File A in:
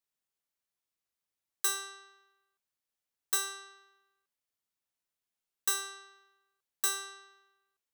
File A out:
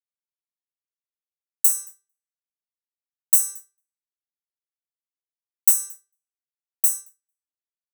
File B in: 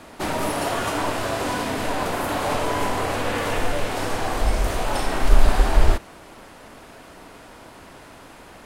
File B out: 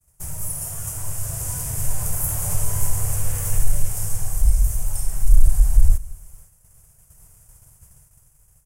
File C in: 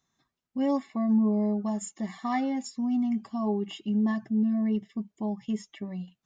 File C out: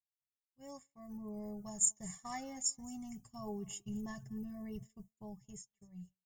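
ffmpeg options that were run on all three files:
ffmpeg -i in.wav -filter_complex "[0:a]dynaudnorm=framelen=250:gausssize=11:maxgain=9dB,firequalizer=gain_entry='entry(150,0);entry(220,-28);entry(440,-18);entry(2000,-16)':delay=0.05:min_phase=1,asplit=2[link_01][link_02];[link_02]aecho=0:1:225|450:0.0708|0.0234[link_03];[link_01][link_03]amix=inputs=2:normalize=0,agate=range=-33dB:threshold=-45dB:ratio=3:detection=peak,acontrast=35,aexciter=amount=13.2:drive=8.9:freq=6200,lowshelf=frequency=160:gain=10,volume=-10.5dB" out.wav

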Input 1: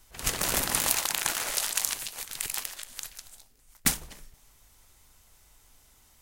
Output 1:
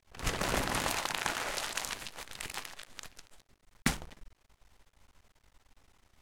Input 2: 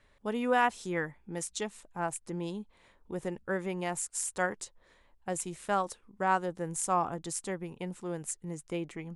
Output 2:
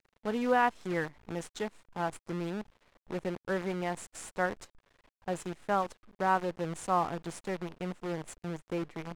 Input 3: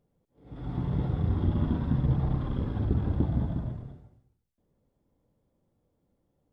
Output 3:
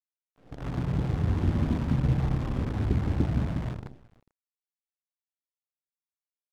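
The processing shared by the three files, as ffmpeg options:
ffmpeg -i in.wav -af "acrusher=bits=7:dc=4:mix=0:aa=0.000001,aemphasis=mode=reproduction:type=75fm" out.wav

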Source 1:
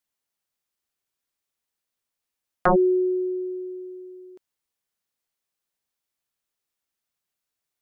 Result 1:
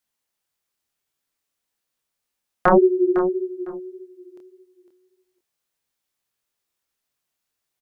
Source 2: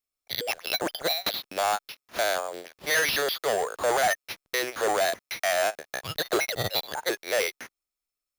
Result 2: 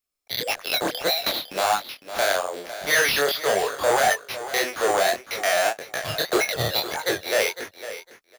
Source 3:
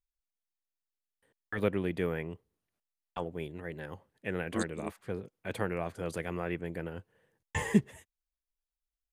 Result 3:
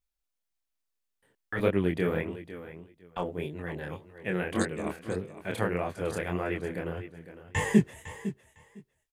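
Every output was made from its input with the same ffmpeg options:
ffmpeg -i in.wav -af "aecho=1:1:505|1010:0.224|0.0381,flanger=delay=20:depth=7.9:speed=1.7,volume=7dB" out.wav

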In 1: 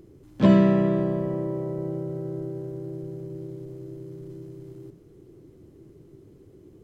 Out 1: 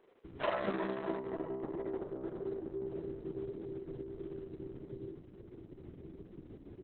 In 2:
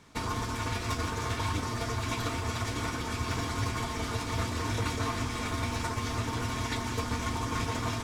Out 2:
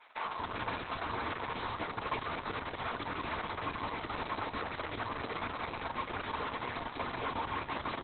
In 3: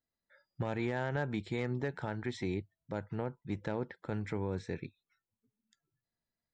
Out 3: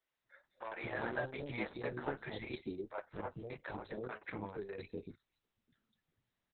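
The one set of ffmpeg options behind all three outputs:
ffmpeg -i in.wav -filter_complex "[0:a]acrossover=split=520|3700[link_01][link_02][link_03];[link_03]adelay=200[link_04];[link_01]adelay=240[link_05];[link_05][link_02][link_04]amix=inputs=3:normalize=0,acrossover=split=330|1700[link_06][link_07][link_08];[link_06]acompressor=threshold=-45dB:ratio=8[link_09];[link_08]asoftclip=type=tanh:threshold=-36dB[link_10];[link_09][link_07][link_10]amix=inputs=3:normalize=0,acrossover=split=280|990[link_11][link_12][link_13];[link_11]acompressor=threshold=-48dB:ratio=4[link_14];[link_12]acompressor=threshold=-38dB:ratio=4[link_15];[link_13]acompressor=threshold=-42dB:ratio=4[link_16];[link_14][link_15][link_16]amix=inputs=3:normalize=0,flanger=delay=9.6:depth=5.9:regen=-24:speed=1.6:shape=sinusoidal,aeval=exprs='0.0422*(cos(1*acos(clip(val(0)/0.0422,-1,1)))-cos(1*PI/2))+0.000266*(cos(2*acos(clip(val(0)/0.0422,-1,1)))-cos(2*PI/2))+0.00119*(cos(6*acos(clip(val(0)/0.0422,-1,1)))-cos(6*PI/2))+0.000473*(cos(8*acos(clip(val(0)/0.0422,-1,1)))-cos(8*PI/2))':channel_layout=same,volume=6.5dB" -ar 48000 -c:a libopus -b:a 6k out.opus

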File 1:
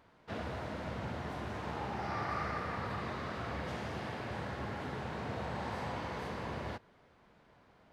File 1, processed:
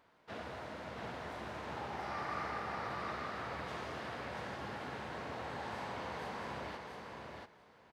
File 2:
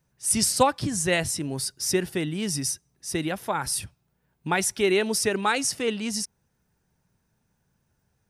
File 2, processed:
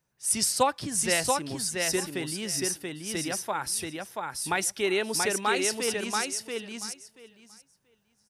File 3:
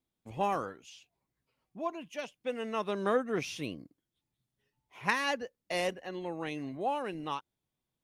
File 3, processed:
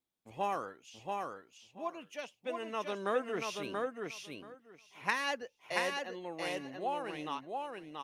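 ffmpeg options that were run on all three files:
ffmpeg -i in.wav -filter_complex "[0:a]lowshelf=frequency=230:gain=-10,asplit=2[link_01][link_02];[link_02]aecho=0:1:682|1364|2046:0.668|0.1|0.015[link_03];[link_01][link_03]amix=inputs=2:normalize=0,volume=-2.5dB" out.wav

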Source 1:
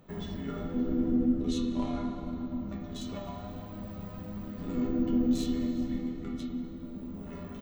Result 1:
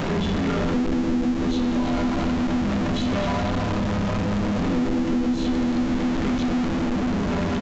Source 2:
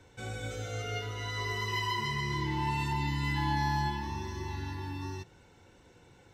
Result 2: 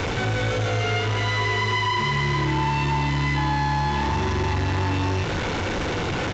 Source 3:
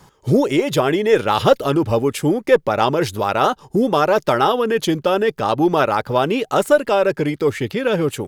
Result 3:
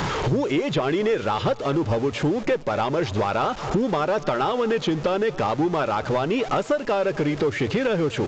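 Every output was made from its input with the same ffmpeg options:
ffmpeg -i in.wav -filter_complex "[0:a]aeval=exprs='val(0)+0.5*0.0473*sgn(val(0))':channel_layout=same,asplit=2[link_01][link_02];[link_02]adelay=233,lowpass=frequency=3800:poles=1,volume=-21.5dB,asplit=2[link_03][link_04];[link_04]adelay=233,lowpass=frequency=3800:poles=1,volume=0.53,asplit=2[link_05][link_06];[link_06]adelay=233,lowpass=frequency=3800:poles=1,volume=0.53,asplit=2[link_07][link_08];[link_08]adelay=233,lowpass=frequency=3800:poles=1,volume=0.53[link_09];[link_03][link_05][link_07][link_09]amix=inputs=4:normalize=0[link_10];[link_01][link_10]amix=inputs=2:normalize=0,acompressor=threshold=-27dB:ratio=8,aresample=16000,aeval=exprs='clip(val(0),-1,0.0596)':channel_layout=same,aresample=44100,bandreject=frequency=60:width_type=h:width=6,bandreject=frequency=120:width_type=h:width=6,acrossover=split=3800[link_11][link_12];[link_12]acompressor=threshold=-50dB:ratio=4:attack=1:release=60[link_13];[link_11][link_13]amix=inputs=2:normalize=0,volume=7.5dB" out.wav

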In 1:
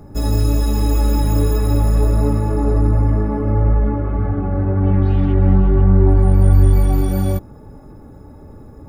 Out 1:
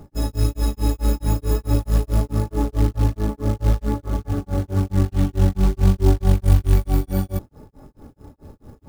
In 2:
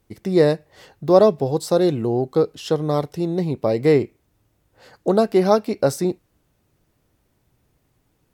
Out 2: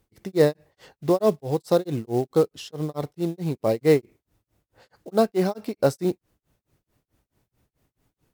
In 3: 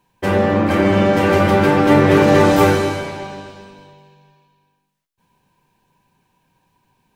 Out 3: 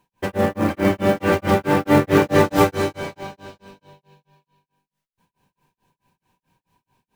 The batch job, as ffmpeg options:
ffmpeg -i in.wav -af "acrusher=bits=6:mode=log:mix=0:aa=0.000001,tremolo=f=4.6:d=1,volume=-1dB" out.wav

